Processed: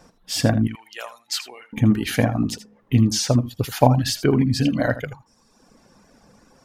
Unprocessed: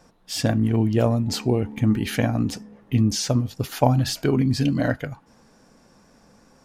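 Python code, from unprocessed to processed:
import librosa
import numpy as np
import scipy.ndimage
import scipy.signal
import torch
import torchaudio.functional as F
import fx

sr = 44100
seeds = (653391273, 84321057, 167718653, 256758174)

y = fx.cheby1_highpass(x, sr, hz=1700.0, order=2, at=(0.67, 1.73))
y = fx.dereverb_blind(y, sr, rt60_s=1.0)
y = y + 10.0 ** (-14.0 / 20.0) * np.pad(y, (int(80 * sr / 1000.0), 0))[:len(y)]
y = y * 10.0 ** (3.5 / 20.0)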